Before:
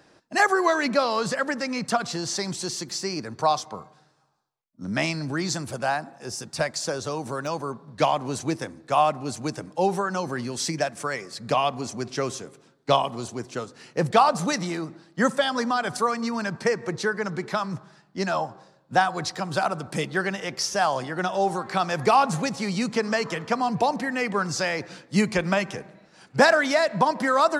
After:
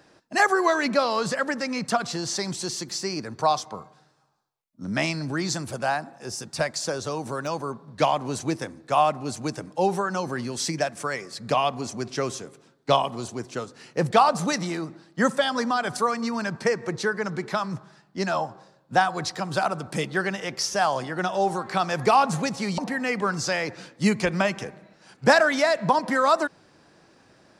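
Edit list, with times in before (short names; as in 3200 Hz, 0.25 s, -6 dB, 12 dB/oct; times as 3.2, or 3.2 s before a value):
22.78–23.9 cut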